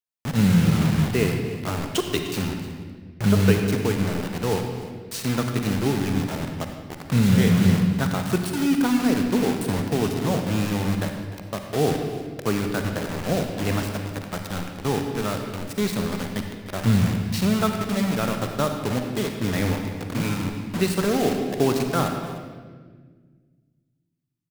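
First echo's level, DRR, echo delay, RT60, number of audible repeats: -16.0 dB, 3.5 dB, 301 ms, 1.5 s, 1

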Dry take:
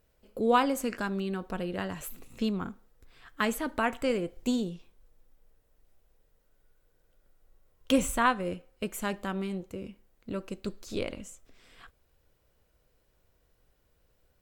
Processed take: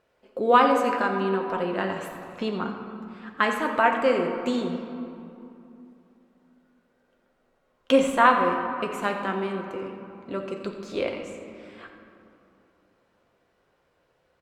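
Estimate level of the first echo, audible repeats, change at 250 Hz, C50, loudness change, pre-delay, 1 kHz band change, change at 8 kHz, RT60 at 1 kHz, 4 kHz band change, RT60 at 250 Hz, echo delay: -13.0 dB, 1, +3.0 dB, 5.0 dB, +6.5 dB, 6 ms, +9.0 dB, -4.5 dB, 2.9 s, +3.5 dB, 3.4 s, 88 ms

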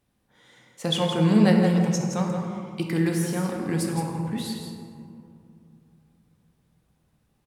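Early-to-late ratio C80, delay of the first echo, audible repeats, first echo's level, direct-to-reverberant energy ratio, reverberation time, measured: 2.5 dB, 167 ms, 1, -7.0 dB, 0.0 dB, 2.7 s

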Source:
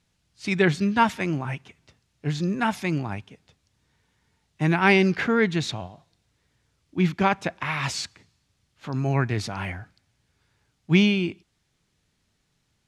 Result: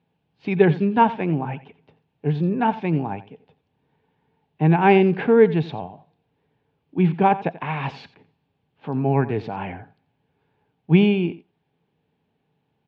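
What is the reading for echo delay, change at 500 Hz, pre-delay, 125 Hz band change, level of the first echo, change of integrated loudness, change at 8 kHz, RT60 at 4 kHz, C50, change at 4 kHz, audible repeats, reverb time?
87 ms, +7.0 dB, no reverb, +3.5 dB, -16.5 dB, +3.5 dB, under -25 dB, no reverb, no reverb, -6.5 dB, 1, no reverb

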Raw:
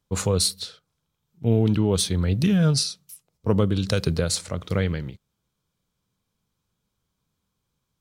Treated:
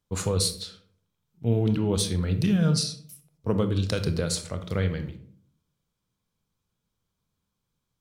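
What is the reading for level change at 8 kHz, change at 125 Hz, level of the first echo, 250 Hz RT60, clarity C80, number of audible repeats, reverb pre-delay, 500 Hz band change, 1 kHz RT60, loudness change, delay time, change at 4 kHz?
-3.5 dB, -3.0 dB, no echo, 0.75 s, 15.5 dB, no echo, 23 ms, -3.5 dB, 0.45 s, -3.0 dB, no echo, -3.5 dB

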